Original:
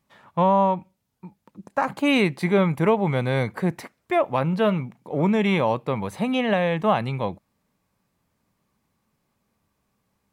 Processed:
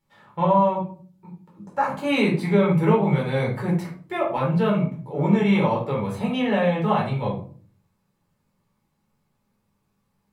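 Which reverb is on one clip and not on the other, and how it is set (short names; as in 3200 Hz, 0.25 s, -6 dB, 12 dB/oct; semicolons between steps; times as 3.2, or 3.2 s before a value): shoebox room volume 320 m³, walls furnished, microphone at 4.3 m; gain -8.5 dB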